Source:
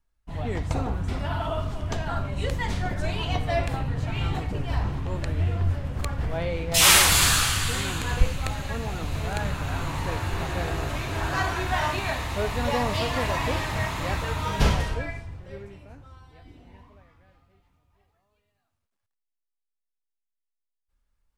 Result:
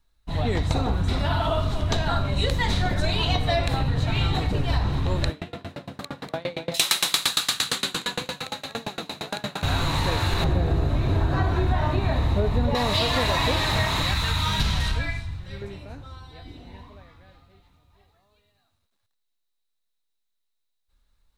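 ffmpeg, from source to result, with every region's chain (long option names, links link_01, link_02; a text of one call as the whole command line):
ffmpeg -i in.wav -filter_complex "[0:a]asettb=1/sr,asplit=3[link_01][link_02][link_03];[link_01]atrim=end=5.304[link_04];[link_02]atrim=start=5.3:end=9.63,asetpts=PTS-STARTPTS,afade=type=in:duration=0.004:curve=qsin,afade=type=out:start_time=4.326:duration=0.004:curve=qsin,highpass=frequency=160:width=0.5412,highpass=frequency=160:width=1.3066,aecho=1:1:243:0.473,atrim=end_sample=190953,aeval=exprs='val(0)*pow(10,-28*if(lt(mod(8.7*n/s,1),2*abs(8.7)/1000),1-mod(8.7*n/s,1)/(2*abs(8.7)/1000),(mod(8.7*n/s,1)-2*abs(8.7)/1000)/(1-2*abs(8.7)/1000))/20)':channel_layout=same[link_05];[link_03]atrim=start=9.626[link_06];[link_04][link_05]acrossfade=duration=0.004:curve1=hsin:curve2=qsin[link_07];[link_07][link_06]acrossfade=duration=0.004:curve1=qsin:curve2=hsin,asettb=1/sr,asplit=3[link_08][link_09][link_10];[link_08]atrim=end=10.444[link_11];[link_09]atrim=start=10.44:end=12.75,asetpts=PTS-STARTPTS,afade=type=in:duration=0.004:curve=qsin,afade=type=out:start_time=2.306:duration=0.004:curve=qsin,acrossover=split=2900[link_12][link_13];[link_13]acompressor=threshold=-44dB:ratio=4:attack=1:release=60[link_14];[link_12][link_14]amix=inputs=2:normalize=0,tiltshelf=frequency=720:gain=8.5[link_15];[link_10]atrim=start=12.746[link_16];[link_11][link_15]acrossfade=duration=0.004:curve1=hsin:curve2=qsin[link_17];[link_17][link_16]acrossfade=duration=0.004:curve1=qsin:curve2=hsin,asettb=1/sr,asplit=3[link_18][link_19][link_20];[link_18]atrim=end=14.024[link_21];[link_19]atrim=start=14.02:end=15.62,asetpts=PTS-STARTPTS,afade=type=in:duration=0.004:curve=qsin,afade=type=out:start_time=1.596:duration=0.004:curve=qsin,equalizer=frequency=480:width=0.89:gain=-12.5,acompressor=threshold=-24dB:ratio=3:attack=3.2:release=140:knee=1:detection=peak[link_22];[link_20]atrim=start=15.616[link_23];[link_21][link_22]acrossfade=duration=0.004:curve1=hsin:curve2=qsin[link_24];[link_24][link_23]acrossfade=duration=0.004:curve1=qsin:curve2=hsin,equalizer=frequency=3900:width=6:gain=14,acompressor=threshold=-25dB:ratio=6,volume=6.5dB" out.wav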